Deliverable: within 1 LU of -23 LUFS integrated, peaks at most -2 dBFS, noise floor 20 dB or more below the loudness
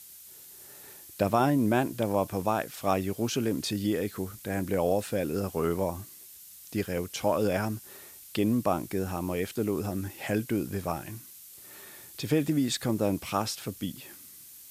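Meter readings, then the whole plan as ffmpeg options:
noise floor -49 dBFS; noise floor target -50 dBFS; loudness -29.5 LUFS; peak -10.5 dBFS; loudness target -23.0 LUFS
-> -af "afftdn=nr=6:nf=-49"
-af "volume=6.5dB"

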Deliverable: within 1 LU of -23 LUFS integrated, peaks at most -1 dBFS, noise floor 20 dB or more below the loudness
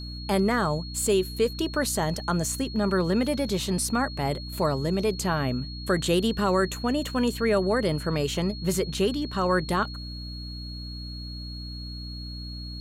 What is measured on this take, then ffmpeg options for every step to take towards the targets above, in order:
hum 60 Hz; harmonics up to 300 Hz; hum level -35 dBFS; steady tone 4300 Hz; tone level -40 dBFS; loudness -27.0 LUFS; peak -12.0 dBFS; loudness target -23.0 LUFS
-> -af "bandreject=f=60:t=h:w=6,bandreject=f=120:t=h:w=6,bandreject=f=180:t=h:w=6,bandreject=f=240:t=h:w=6,bandreject=f=300:t=h:w=6"
-af "bandreject=f=4.3k:w=30"
-af "volume=4dB"

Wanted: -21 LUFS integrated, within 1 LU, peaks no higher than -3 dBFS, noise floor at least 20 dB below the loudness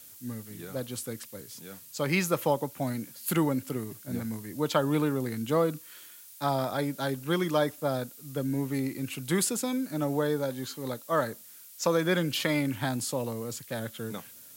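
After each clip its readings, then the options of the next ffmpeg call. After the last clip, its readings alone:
noise floor -50 dBFS; noise floor target -51 dBFS; loudness -30.5 LUFS; peak -11.5 dBFS; loudness target -21.0 LUFS
-> -af "afftdn=nr=6:nf=-50"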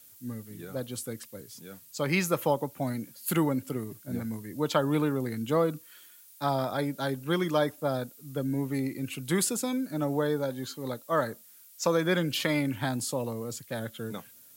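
noise floor -54 dBFS; loudness -30.5 LUFS; peak -11.5 dBFS; loudness target -21.0 LUFS
-> -af "volume=9.5dB,alimiter=limit=-3dB:level=0:latency=1"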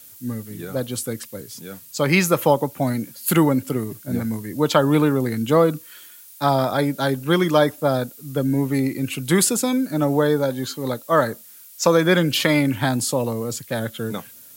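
loudness -21.0 LUFS; peak -3.0 dBFS; noise floor -45 dBFS

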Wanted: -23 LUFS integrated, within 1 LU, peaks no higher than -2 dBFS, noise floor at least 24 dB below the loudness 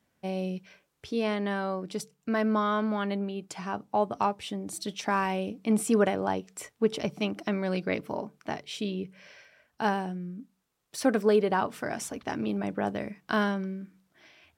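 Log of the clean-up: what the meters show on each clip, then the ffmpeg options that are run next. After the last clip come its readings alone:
loudness -30.0 LUFS; peak -12.0 dBFS; loudness target -23.0 LUFS
-> -af "volume=7dB"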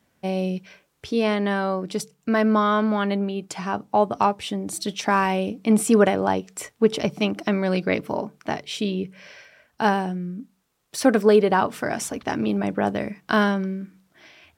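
loudness -23.0 LUFS; peak -5.0 dBFS; noise floor -68 dBFS

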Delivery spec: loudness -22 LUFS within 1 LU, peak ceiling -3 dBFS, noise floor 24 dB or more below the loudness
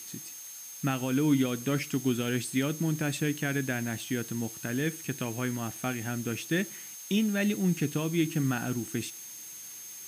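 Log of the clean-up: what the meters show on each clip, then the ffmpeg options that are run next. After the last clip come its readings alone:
steady tone 6400 Hz; tone level -44 dBFS; noise floor -44 dBFS; noise floor target -55 dBFS; loudness -30.5 LUFS; peak -14.5 dBFS; loudness target -22.0 LUFS
-> -af "bandreject=f=6.4k:w=30"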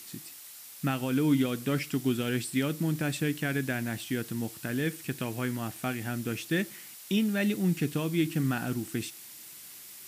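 steady tone none; noise floor -47 dBFS; noise floor target -55 dBFS
-> -af "afftdn=nr=8:nf=-47"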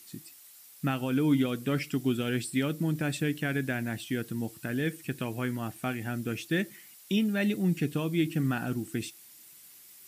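noise floor -53 dBFS; noise floor target -55 dBFS
-> -af "afftdn=nr=6:nf=-53"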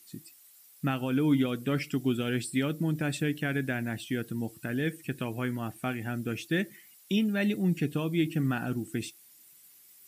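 noise floor -57 dBFS; loudness -30.5 LUFS; peak -15.0 dBFS; loudness target -22.0 LUFS
-> -af "volume=8.5dB"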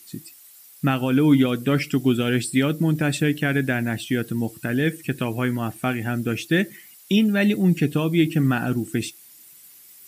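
loudness -22.0 LUFS; peak -6.5 dBFS; noise floor -48 dBFS

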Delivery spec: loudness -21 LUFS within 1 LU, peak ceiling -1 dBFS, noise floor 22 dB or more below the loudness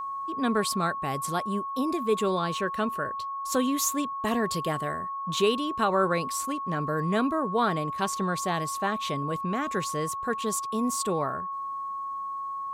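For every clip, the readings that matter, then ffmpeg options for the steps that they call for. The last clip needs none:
steady tone 1100 Hz; tone level -31 dBFS; loudness -28.5 LUFS; peak -13.0 dBFS; loudness target -21.0 LUFS
-> -af "bandreject=f=1.1k:w=30"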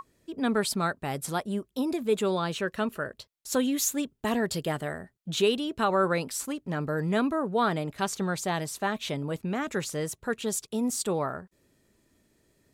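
steady tone none; loudness -29.5 LUFS; peak -13.5 dBFS; loudness target -21.0 LUFS
-> -af "volume=8.5dB"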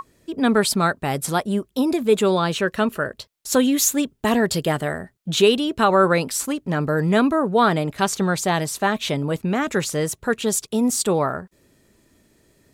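loudness -21.0 LUFS; peak -5.0 dBFS; noise floor -64 dBFS

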